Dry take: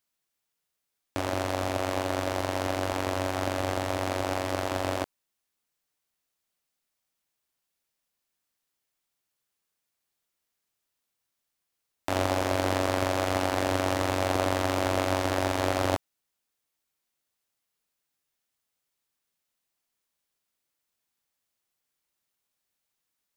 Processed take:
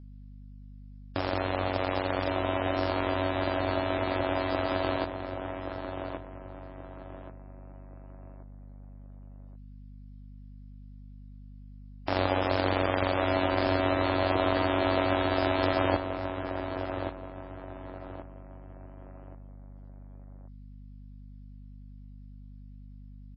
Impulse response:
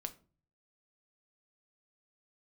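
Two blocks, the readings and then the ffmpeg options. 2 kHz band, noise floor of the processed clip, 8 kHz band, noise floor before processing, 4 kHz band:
+0.5 dB, -47 dBFS, under -40 dB, -83 dBFS, -1.0 dB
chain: -filter_complex "[0:a]asplit=2[a][b];[b]adelay=1128,lowpass=f=2k:p=1,volume=-6.5dB,asplit=2[c][d];[d]adelay=1128,lowpass=f=2k:p=1,volume=0.36,asplit=2[e][f];[f]adelay=1128,lowpass=f=2k:p=1,volume=0.36,asplit=2[g][h];[h]adelay=1128,lowpass=f=2k:p=1,volume=0.36[i];[a][c][e][g][i]amix=inputs=5:normalize=0,aeval=exprs='val(0)+0.00562*(sin(2*PI*50*n/s)+sin(2*PI*2*50*n/s)/2+sin(2*PI*3*50*n/s)/3+sin(2*PI*4*50*n/s)/4+sin(2*PI*5*50*n/s)/5)':c=same" -ar 16000 -c:a libmp3lame -b:a 16k

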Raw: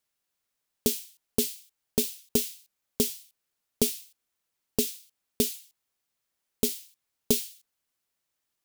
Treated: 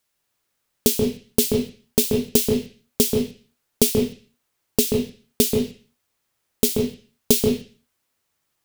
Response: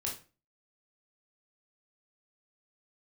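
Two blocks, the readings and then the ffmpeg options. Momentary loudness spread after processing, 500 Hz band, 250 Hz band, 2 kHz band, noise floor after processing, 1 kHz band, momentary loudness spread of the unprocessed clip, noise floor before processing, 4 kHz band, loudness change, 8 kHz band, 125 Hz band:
10 LU, +11.0 dB, +11.0 dB, +8.5 dB, -75 dBFS, +10.0 dB, 14 LU, -83 dBFS, +7.5 dB, +7.5 dB, +7.0 dB, +12.0 dB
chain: -filter_complex "[0:a]asplit=2[a][b];[1:a]atrim=start_sample=2205,lowpass=2.2k,adelay=133[c];[b][c]afir=irnorm=-1:irlink=0,volume=-1dB[d];[a][d]amix=inputs=2:normalize=0,volume=7dB"

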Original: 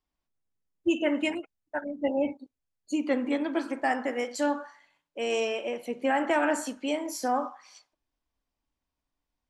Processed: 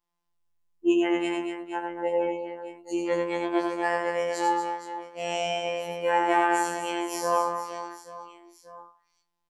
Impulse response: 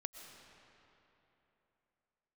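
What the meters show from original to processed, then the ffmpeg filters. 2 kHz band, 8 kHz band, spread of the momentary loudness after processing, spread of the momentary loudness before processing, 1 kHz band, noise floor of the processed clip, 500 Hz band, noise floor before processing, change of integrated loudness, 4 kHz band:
+1.5 dB, +2.0 dB, 14 LU, 10 LU, +6.0 dB, -78 dBFS, +2.5 dB, under -85 dBFS, +2.0 dB, +2.0 dB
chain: -filter_complex "[0:a]equalizer=f=960:w=5.6:g=12.5,asplit=2[a][b];[b]aecho=0:1:90|234|464.4|833|1423:0.631|0.398|0.251|0.158|0.1[c];[a][c]amix=inputs=2:normalize=0,afftfilt=real='hypot(re,im)*cos(PI*b)':imag='0':win_size=1024:overlap=0.75,afftfilt=real='re*2*eq(mod(b,4),0)':imag='im*2*eq(mod(b,4),0)':win_size=2048:overlap=0.75"

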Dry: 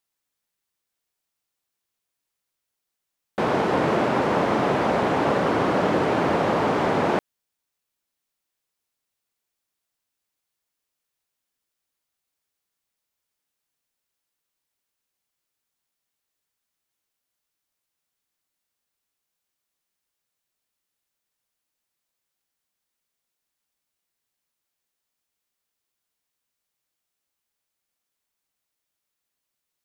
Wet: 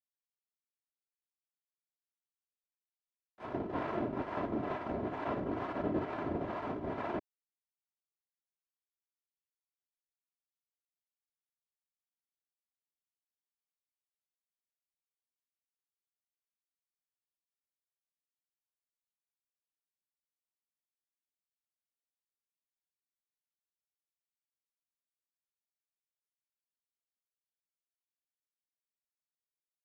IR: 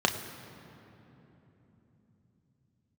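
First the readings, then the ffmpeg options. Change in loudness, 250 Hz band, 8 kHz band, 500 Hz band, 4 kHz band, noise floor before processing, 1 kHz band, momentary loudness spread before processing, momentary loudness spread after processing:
-15.5 dB, -13.0 dB, under -25 dB, -16.0 dB, -22.5 dB, -83 dBFS, -17.0 dB, 3 LU, 4 LU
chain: -filter_complex "[0:a]agate=range=-24dB:threshold=-20dB:ratio=16:detection=peak,highshelf=f=3.2k:g=-9,aecho=1:1:3:0.5,acrossover=split=200|4400[a][b][c];[a]acontrast=87[d];[c]alimiter=level_in=35.5dB:limit=-24dB:level=0:latency=1:release=366,volume=-35.5dB[e];[d][b][e]amix=inputs=3:normalize=0,acrossover=split=600[f][g];[f]aeval=exprs='val(0)*(1-0.7/2+0.7/2*cos(2*PI*2.2*n/s))':c=same[h];[g]aeval=exprs='val(0)*(1-0.7/2-0.7/2*cos(2*PI*2.2*n/s))':c=same[i];[h][i]amix=inputs=2:normalize=0,volume=-8.5dB"

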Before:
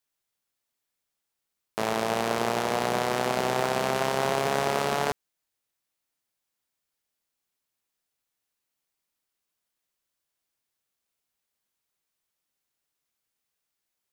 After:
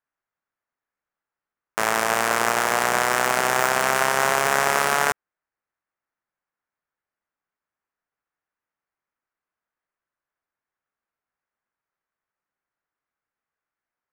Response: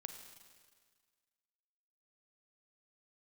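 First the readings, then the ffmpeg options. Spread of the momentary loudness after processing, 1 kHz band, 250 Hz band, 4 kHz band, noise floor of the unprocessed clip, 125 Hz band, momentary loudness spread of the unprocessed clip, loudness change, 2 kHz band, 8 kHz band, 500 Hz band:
4 LU, +6.5 dB, -1.5 dB, +5.0 dB, -84 dBFS, -2.0 dB, 4 LU, +6.5 dB, +11.0 dB, +11.0 dB, +1.5 dB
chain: -af "equalizer=f=1.6k:t=o:w=2:g=15,adynamicsmooth=sensitivity=7:basefreq=1.3k,aexciter=amount=4.5:drive=3.8:freq=5.3k,volume=-3dB"

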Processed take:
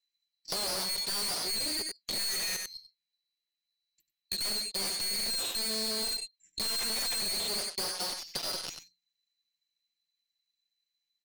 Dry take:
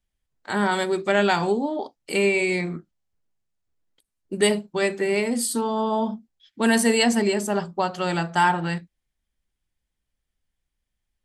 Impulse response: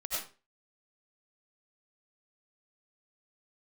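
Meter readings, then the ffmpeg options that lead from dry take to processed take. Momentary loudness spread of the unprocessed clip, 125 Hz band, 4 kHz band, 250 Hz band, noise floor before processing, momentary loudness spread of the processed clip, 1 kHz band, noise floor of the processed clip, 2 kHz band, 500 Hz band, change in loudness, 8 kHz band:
10 LU, -21.5 dB, +2.0 dB, -22.5 dB, -81 dBFS, 7 LU, -19.5 dB, under -85 dBFS, -15.5 dB, -20.5 dB, -8.0 dB, -1.5 dB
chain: -filter_complex "[0:a]afftfilt=real='real(if(lt(b,736),b+184*(1-2*mod(floor(b/184),2)),b),0)':imag='imag(if(lt(b,736),b+184*(1-2*mod(floor(b/184),2)),b),0)':win_size=2048:overlap=0.75,asoftclip=type=tanh:threshold=-23.5dB,equalizer=f=2.2k:w=0.92:g=8.5,bandreject=f=60:t=h:w=6,bandreject=f=120:t=h:w=6,bandreject=f=180:t=h:w=6,bandreject=f=240:t=h:w=6,bandreject=f=300:t=h:w=6,aecho=1:1:5.7:0.86,afwtdn=0.0355,asuperstop=centerf=740:order=20:qfactor=0.55,aeval=exprs='0.447*(cos(1*acos(clip(val(0)/0.447,-1,1)))-cos(1*PI/2))+0.141*(cos(6*acos(clip(val(0)/0.447,-1,1)))-cos(6*PI/2))+0.0158*(cos(7*acos(clip(val(0)/0.447,-1,1)))-cos(7*PI/2))':c=same,acrossover=split=390[a][b];[a]acompressor=threshold=-43dB:ratio=6[c];[c][b]amix=inputs=2:normalize=0,aecho=1:1:95:0.211,asoftclip=type=hard:threshold=-30.5dB,acompressor=threshold=-41dB:ratio=10,volume=8.5dB"

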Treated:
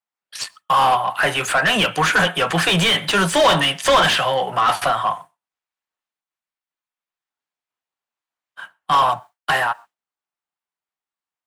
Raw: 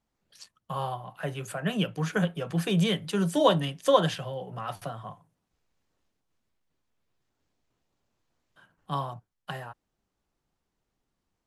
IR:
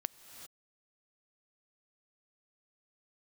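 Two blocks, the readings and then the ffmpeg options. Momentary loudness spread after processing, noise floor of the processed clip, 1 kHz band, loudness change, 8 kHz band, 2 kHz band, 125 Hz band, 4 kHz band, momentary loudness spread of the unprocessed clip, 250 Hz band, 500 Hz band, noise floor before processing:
11 LU, under -85 dBFS, +15.5 dB, +11.5 dB, +16.0 dB, +19.5 dB, +3.0 dB, +16.0 dB, 17 LU, +3.0 dB, +7.0 dB, -82 dBFS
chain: -filter_complex "[0:a]tiltshelf=f=970:g=-5,aexciter=amount=1.5:drive=7.4:freq=7.9k,acrossover=split=6900[a][b];[b]acompressor=threshold=-43dB:ratio=4:attack=1:release=60[c];[a][c]amix=inputs=2:normalize=0,agate=range=-33dB:threshold=-51dB:ratio=3:detection=peak,asplit=2[d][e];[e]lowshelf=f=460:t=q:w=1.5:g=-14[f];[1:a]atrim=start_sample=2205,atrim=end_sample=6174[g];[f][g]afir=irnorm=-1:irlink=0,volume=-2.5dB[h];[d][h]amix=inputs=2:normalize=0,asplit=2[i][j];[j]highpass=f=720:p=1,volume=29dB,asoftclip=type=tanh:threshold=-3.5dB[k];[i][k]amix=inputs=2:normalize=0,lowpass=f=1.9k:p=1,volume=-6dB,asoftclip=type=tanh:threshold=-6dB"

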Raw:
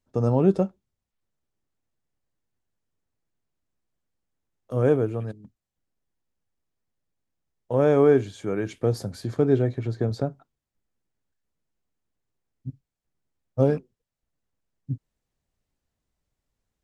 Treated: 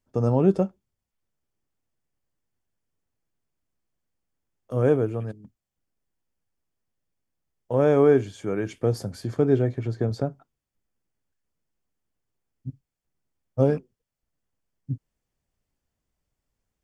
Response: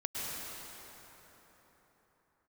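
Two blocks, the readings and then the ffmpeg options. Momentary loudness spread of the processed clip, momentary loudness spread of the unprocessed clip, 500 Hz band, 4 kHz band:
16 LU, 16 LU, 0.0 dB, -1.0 dB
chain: -af "bandreject=f=3.9k:w=9.3"

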